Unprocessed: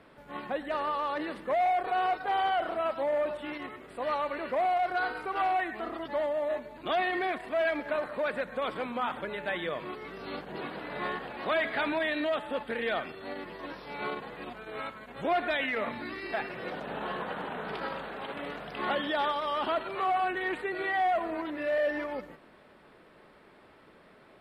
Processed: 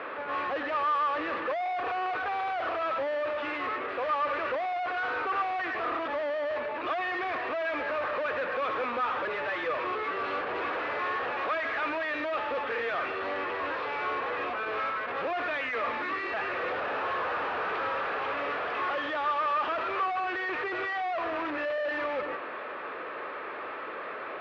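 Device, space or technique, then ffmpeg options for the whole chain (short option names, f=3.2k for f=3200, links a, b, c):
overdrive pedal into a guitar cabinet: -filter_complex "[0:a]asplit=2[a][b];[b]highpass=f=720:p=1,volume=36dB,asoftclip=type=tanh:threshold=-19dB[c];[a][c]amix=inputs=2:normalize=0,lowpass=f=1.2k:p=1,volume=-6dB,highpass=89,equalizer=f=150:t=q:w=4:g=-9,equalizer=f=210:t=q:w=4:g=-9,equalizer=f=500:t=q:w=4:g=5,equalizer=f=1.2k:t=q:w=4:g=9,equalizer=f=1.7k:t=q:w=4:g=5,equalizer=f=2.5k:t=q:w=4:g=7,lowpass=f=4.5k:w=0.5412,lowpass=f=4.5k:w=1.3066,volume=-7.5dB"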